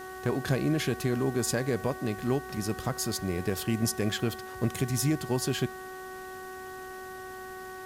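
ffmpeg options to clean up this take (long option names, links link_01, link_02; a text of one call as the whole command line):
ffmpeg -i in.wav -af "adeclick=threshold=4,bandreject=frequency=374.3:width_type=h:width=4,bandreject=frequency=748.6:width_type=h:width=4,bandreject=frequency=1122.9:width_type=h:width=4,bandreject=frequency=1497.2:width_type=h:width=4,bandreject=frequency=1871.5:width_type=h:width=4,afwtdn=0.0022" out.wav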